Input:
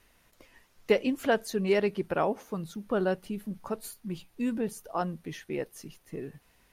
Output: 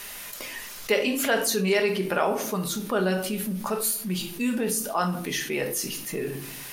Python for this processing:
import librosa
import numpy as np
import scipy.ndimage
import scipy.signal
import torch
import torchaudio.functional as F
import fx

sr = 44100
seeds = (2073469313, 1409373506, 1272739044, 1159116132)

y = fx.tilt_eq(x, sr, slope=3.0)
y = fx.room_shoebox(y, sr, seeds[0], volume_m3=420.0, walls='furnished', distance_m=1.3)
y = fx.env_flatten(y, sr, amount_pct=50)